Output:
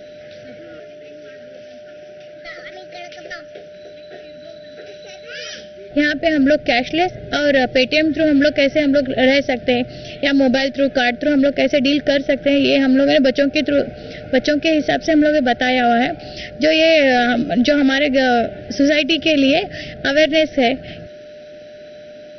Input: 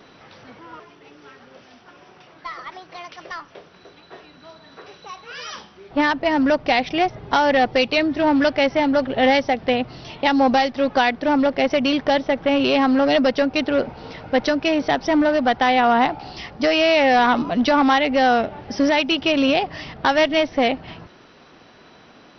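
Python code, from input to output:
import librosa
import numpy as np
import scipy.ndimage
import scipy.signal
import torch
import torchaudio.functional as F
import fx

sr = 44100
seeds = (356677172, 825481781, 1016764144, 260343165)

y = x + 10.0 ** (-39.0 / 20.0) * np.sin(2.0 * np.pi * 600.0 * np.arange(len(x)) / sr)
y = scipy.signal.sosfilt(scipy.signal.ellip(3, 1.0, 60, [700.0, 1500.0], 'bandstop', fs=sr, output='sos'), y)
y = y * librosa.db_to_amplitude(4.5)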